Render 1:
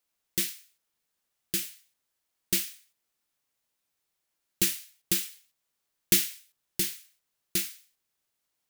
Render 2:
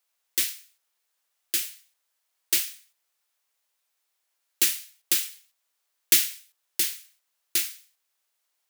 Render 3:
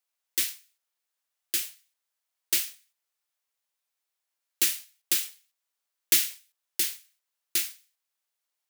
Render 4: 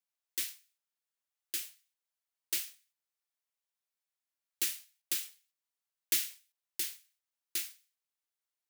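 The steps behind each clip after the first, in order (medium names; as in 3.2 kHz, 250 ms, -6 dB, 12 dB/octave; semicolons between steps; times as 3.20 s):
high-pass 570 Hz 12 dB/octave; trim +4 dB
waveshaping leveller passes 1; trim -5.5 dB
bass shelf 98 Hz -11 dB; trim -8.5 dB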